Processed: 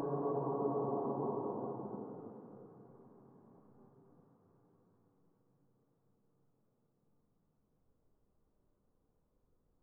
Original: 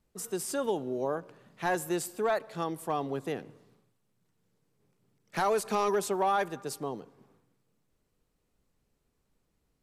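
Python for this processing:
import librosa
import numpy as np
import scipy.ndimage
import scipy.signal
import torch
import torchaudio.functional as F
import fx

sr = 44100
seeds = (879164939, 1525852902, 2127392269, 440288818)

y = scipy.signal.sosfilt(scipy.signal.butter(4, 1200.0, 'lowpass', fs=sr, output='sos'), x)
y = fx.paulstretch(y, sr, seeds[0], factor=7.0, window_s=0.5, from_s=6.78)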